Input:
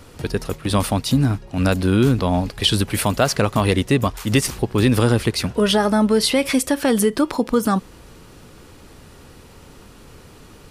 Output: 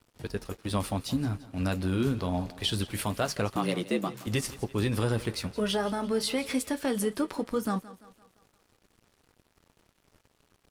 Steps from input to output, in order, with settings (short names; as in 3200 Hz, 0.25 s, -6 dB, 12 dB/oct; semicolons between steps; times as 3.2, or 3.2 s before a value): 3.56–4.27 frequency shift +83 Hz; flange 0.24 Hz, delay 8.9 ms, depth 3.2 ms, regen -54%; wow and flutter 17 cents; crossover distortion -45 dBFS; on a send: thinning echo 0.171 s, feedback 50%, high-pass 180 Hz, level -17 dB; on the sum: gain -7 dB